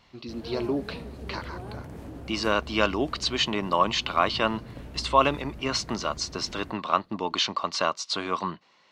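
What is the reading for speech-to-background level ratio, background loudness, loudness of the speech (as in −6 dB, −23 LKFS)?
15.0 dB, −42.0 LKFS, −27.0 LKFS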